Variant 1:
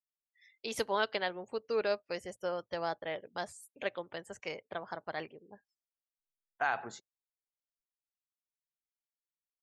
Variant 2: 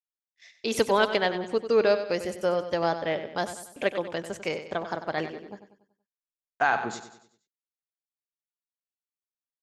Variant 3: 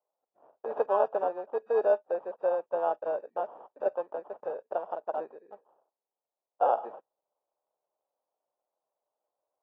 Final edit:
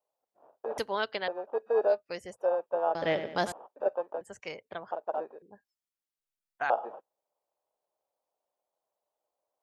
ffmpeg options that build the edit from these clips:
-filter_complex "[0:a]asplit=4[a][b][c][d];[2:a]asplit=6[e][f][g][h][i][j];[e]atrim=end=0.782[k];[a]atrim=start=0.778:end=1.282[l];[f]atrim=start=1.278:end=2.03[m];[b]atrim=start=1.87:end=2.47[n];[g]atrim=start=2.31:end=2.952[o];[1:a]atrim=start=2.948:end=3.522[p];[h]atrim=start=3.518:end=4.212[q];[c]atrim=start=4.208:end=4.912[r];[i]atrim=start=4.908:end=5.422[s];[d]atrim=start=5.418:end=6.702[t];[j]atrim=start=6.698[u];[k][l]acrossfade=d=0.004:c1=hsin:c2=hsin[v];[v][m]acrossfade=d=0.004:c1=hsin:c2=hsin[w];[w][n]acrossfade=d=0.16:c1=tri:c2=tri[x];[x][o]acrossfade=d=0.16:c1=tri:c2=tri[y];[y][p]acrossfade=d=0.004:c1=hsin:c2=hsin[z];[z][q]acrossfade=d=0.004:c1=hsin:c2=hsin[aa];[aa][r]acrossfade=d=0.004:c1=hsin:c2=hsin[ab];[ab][s]acrossfade=d=0.004:c1=hsin:c2=hsin[ac];[ac][t]acrossfade=d=0.004:c1=hsin:c2=hsin[ad];[ad][u]acrossfade=d=0.004:c1=hsin:c2=hsin"

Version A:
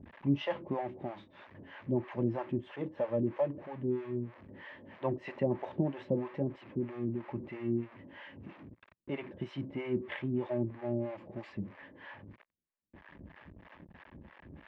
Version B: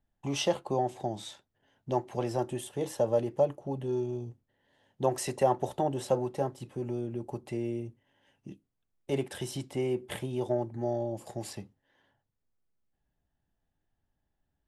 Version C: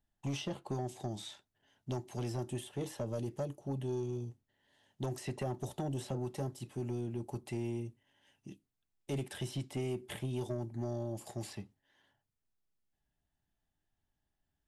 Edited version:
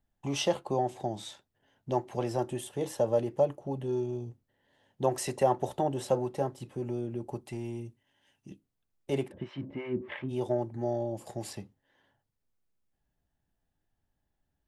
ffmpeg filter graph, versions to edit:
-filter_complex "[1:a]asplit=3[a][b][c];[a]atrim=end=7.412[d];[2:a]atrim=start=7.408:end=8.512[e];[b]atrim=start=8.508:end=9.32[f];[0:a]atrim=start=9.28:end=10.32[g];[c]atrim=start=10.28[h];[d][e]acrossfade=d=0.004:c1=hsin:c2=hsin[i];[i][f]acrossfade=d=0.004:c1=hsin:c2=hsin[j];[j][g]acrossfade=d=0.04:c1=tri:c2=tri[k];[k][h]acrossfade=d=0.04:c1=tri:c2=tri"

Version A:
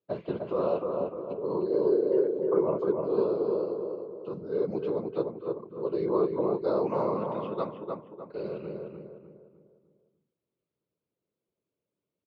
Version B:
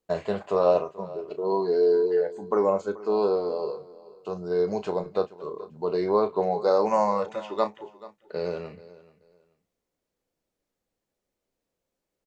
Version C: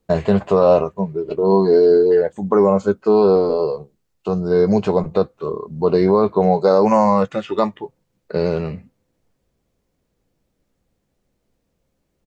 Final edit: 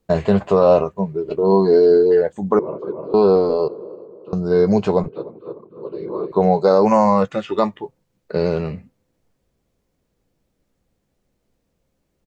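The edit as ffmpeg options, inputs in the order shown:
-filter_complex "[0:a]asplit=3[a][b][c];[2:a]asplit=4[d][e][f][g];[d]atrim=end=2.592[h];[a]atrim=start=2.588:end=3.142[i];[e]atrim=start=3.138:end=3.682[j];[b]atrim=start=3.678:end=4.332[k];[f]atrim=start=4.328:end=5.082[l];[c]atrim=start=5.078:end=6.322[m];[g]atrim=start=6.318[n];[h][i]acrossfade=d=0.004:c1=hsin:c2=hsin[o];[o][j]acrossfade=d=0.004:c1=hsin:c2=hsin[p];[p][k]acrossfade=d=0.004:c1=hsin:c2=hsin[q];[q][l]acrossfade=d=0.004:c1=hsin:c2=hsin[r];[r][m]acrossfade=d=0.004:c1=hsin:c2=hsin[s];[s][n]acrossfade=d=0.004:c1=hsin:c2=hsin"

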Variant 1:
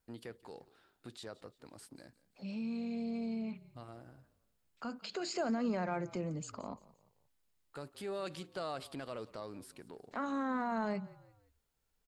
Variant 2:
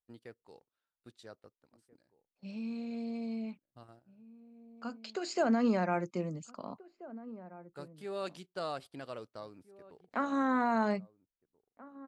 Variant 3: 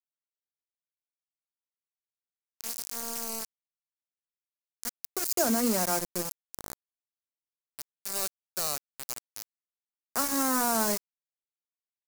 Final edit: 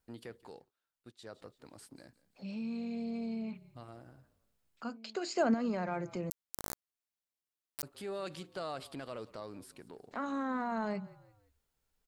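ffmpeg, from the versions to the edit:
-filter_complex "[1:a]asplit=2[a][b];[0:a]asplit=4[c][d][e][f];[c]atrim=end=0.72[g];[a]atrim=start=0.48:end=1.4[h];[d]atrim=start=1.16:end=4.832[i];[b]atrim=start=4.828:end=5.542[j];[e]atrim=start=5.538:end=6.302[k];[2:a]atrim=start=6.298:end=7.832[l];[f]atrim=start=7.828[m];[g][h]acrossfade=d=0.24:c1=tri:c2=tri[n];[n][i]acrossfade=d=0.24:c1=tri:c2=tri[o];[o][j]acrossfade=d=0.004:c1=hsin:c2=hsin[p];[p][k]acrossfade=d=0.004:c1=hsin:c2=hsin[q];[q][l]acrossfade=d=0.004:c1=hsin:c2=hsin[r];[r][m]acrossfade=d=0.004:c1=hsin:c2=hsin"

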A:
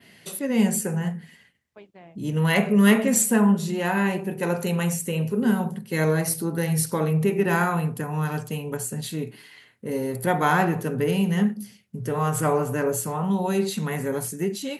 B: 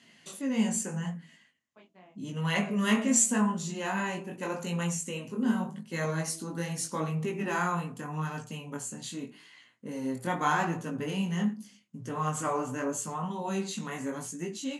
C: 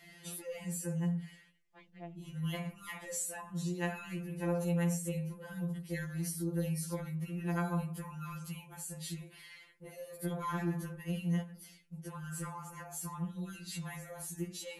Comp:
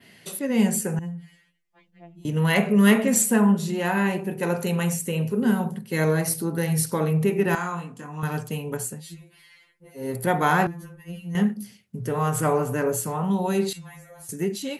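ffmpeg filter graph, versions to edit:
-filter_complex "[2:a]asplit=4[a][b][c][d];[0:a]asplit=6[e][f][g][h][i][j];[e]atrim=end=0.992[k];[a]atrim=start=0.988:end=2.252[l];[f]atrim=start=2.248:end=7.552[m];[1:a]atrim=start=7.548:end=8.232[n];[g]atrim=start=8.228:end=9.03[o];[b]atrim=start=8.87:end=10.1[p];[h]atrim=start=9.94:end=10.672[q];[c]atrim=start=10.668:end=11.352[r];[i]atrim=start=11.348:end=13.732[s];[d]atrim=start=13.728:end=14.292[t];[j]atrim=start=14.288[u];[k][l]acrossfade=d=0.004:c1=hsin:c2=hsin[v];[v][m]acrossfade=d=0.004:c1=hsin:c2=hsin[w];[w][n]acrossfade=d=0.004:c1=hsin:c2=hsin[x];[x][o]acrossfade=d=0.004:c1=hsin:c2=hsin[y];[y][p]acrossfade=d=0.16:c1=tri:c2=tri[z];[z][q]acrossfade=d=0.16:c1=tri:c2=tri[aa];[aa][r]acrossfade=d=0.004:c1=hsin:c2=hsin[ab];[ab][s]acrossfade=d=0.004:c1=hsin:c2=hsin[ac];[ac][t]acrossfade=d=0.004:c1=hsin:c2=hsin[ad];[ad][u]acrossfade=d=0.004:c1=hsin:c2=hsin"

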